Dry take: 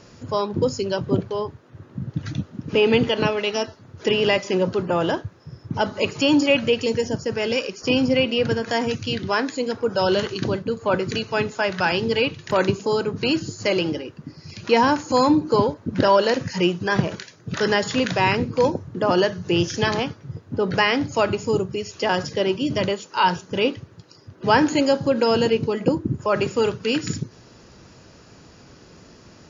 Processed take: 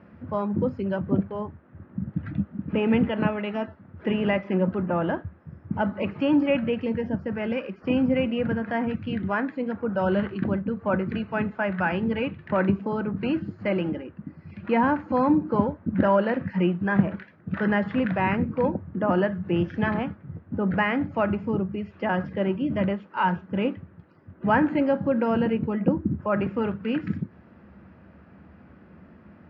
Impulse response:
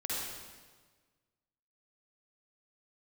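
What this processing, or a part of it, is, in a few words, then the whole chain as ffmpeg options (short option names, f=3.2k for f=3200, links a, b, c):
bass cabinet: -af "highpass=61,equalizer=f=77:t=q:w=4:g=9,equalizer=f=120:t=q:w=4:g=-7,equalizer=f=200:t=q:w=4:g=9,equalizer=f=430:t=q:w=4:g=-7,equalizer=f=1k:t=q:w=4:g=-3,lowpass=f=2.1k:w=0.5412,lowpass=f=2.1k:w=1.3066,volume=-3dB"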